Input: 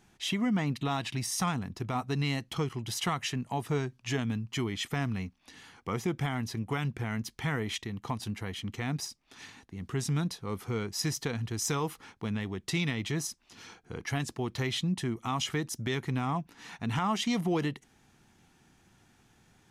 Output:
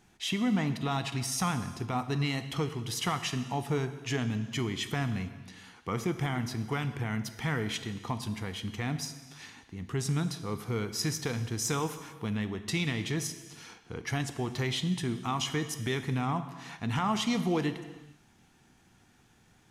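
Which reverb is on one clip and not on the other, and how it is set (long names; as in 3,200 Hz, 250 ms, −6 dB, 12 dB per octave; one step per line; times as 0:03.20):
reverb whose tail is shaped and stops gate 480 ms falling, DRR 9 dB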